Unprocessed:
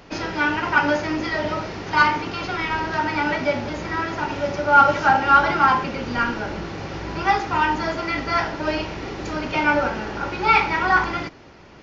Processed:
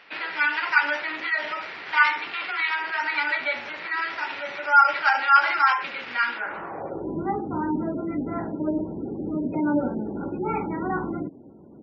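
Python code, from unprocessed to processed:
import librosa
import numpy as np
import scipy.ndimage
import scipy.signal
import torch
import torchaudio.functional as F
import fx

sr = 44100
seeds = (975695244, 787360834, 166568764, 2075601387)

y = fx.sample_hold(x, sr, seeds[0], rate_hz=6400.0, jitter_pct=20)
y = fx.filter_sweep_bandpass(y, sr, from_hz=2200.0, to_hz=250.0, start_s=6.34, end_s=7.2, q=1.7)
y = fx.spec_gate(y, sr, threshold_db=-25, keep='strong')
y = y * librosa.db_to_amplitude(5.0)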